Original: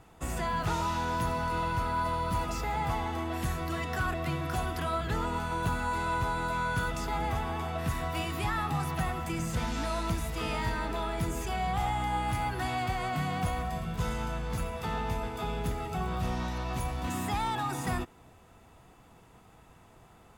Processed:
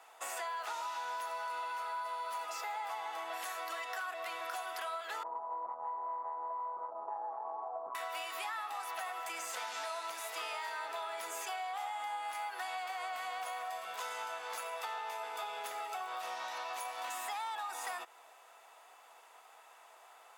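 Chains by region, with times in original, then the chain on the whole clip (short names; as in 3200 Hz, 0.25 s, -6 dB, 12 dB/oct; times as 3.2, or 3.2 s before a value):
5.23–7.95 steep low-pass 1100 Hz 72 dB/oct + core saturation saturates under 170 Hz
whole clip: HPF 620 Hz 24 dB/oct; compressor, threshold -40 dBFS; gain +2.5 dB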